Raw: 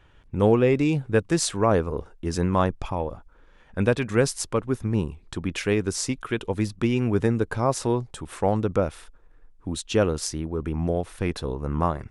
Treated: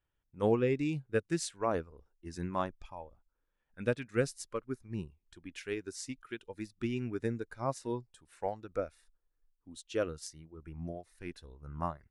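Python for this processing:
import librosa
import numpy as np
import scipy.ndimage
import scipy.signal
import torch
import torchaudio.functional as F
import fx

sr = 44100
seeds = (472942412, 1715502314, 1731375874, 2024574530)

y = fx.noise_reduce_blind(x, sr, reduce_db=10)
y = fx.upward_expand(y, sr, threshold_db=-37.0, expansion=1.5)
y = y * librosa.db_to_amplitude(-8.0)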